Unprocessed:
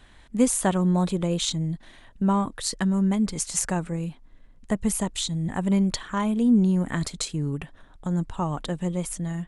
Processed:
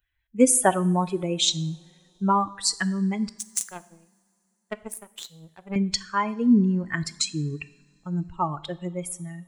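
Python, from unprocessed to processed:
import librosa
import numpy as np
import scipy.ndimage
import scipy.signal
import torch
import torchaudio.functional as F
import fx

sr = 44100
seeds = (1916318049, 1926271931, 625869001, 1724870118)

y = fx.bin_expand(x, sr, power=2.0)
y = fx.low_shelf(y, sr, hz=110.0, db=-7.0)
y = fx.power_curve(y, sr, exponent=2.0, at=(3.29, 5.76))
y = fx.low_shelf(y, sr, hz=280.0, db=-7.5)
y = fx.rev_double_slope(y, sr, seeds[0], early_s=0.68, late_s=3.3, knee_db=-21, drr_db=15.0)
y = F.gain(torch.from_numpy(y), 9.0).numpy()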